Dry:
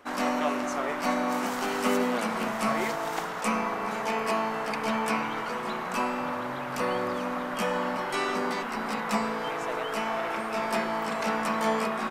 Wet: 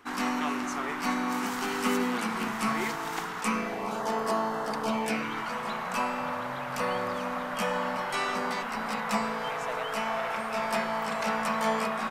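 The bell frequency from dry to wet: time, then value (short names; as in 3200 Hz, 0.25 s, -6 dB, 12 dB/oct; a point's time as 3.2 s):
bell -15 dB 0.42 oct
3.47 s 590 Hz
4.03 s 2400 Hz
4.8 s 2400 Hz
5.6 s 330 Hz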